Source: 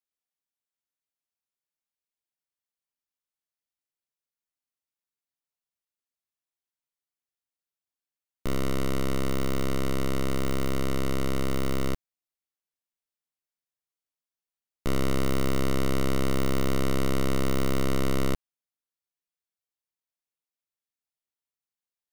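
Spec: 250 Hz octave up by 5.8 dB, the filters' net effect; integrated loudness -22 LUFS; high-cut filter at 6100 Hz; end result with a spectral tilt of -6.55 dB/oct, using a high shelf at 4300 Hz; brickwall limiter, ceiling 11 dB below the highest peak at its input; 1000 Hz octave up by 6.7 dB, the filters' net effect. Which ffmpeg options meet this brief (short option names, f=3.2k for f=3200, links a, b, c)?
-af "lowpass=6.1k,equalizer=f=250:t=o:g=7,equalizer=f=1k:t=o:g=8.5,highshelf=f=4.3k:g=-4.5,volume=13.5dB,alimiter=limit=-11.5dB:level=0:latency=1"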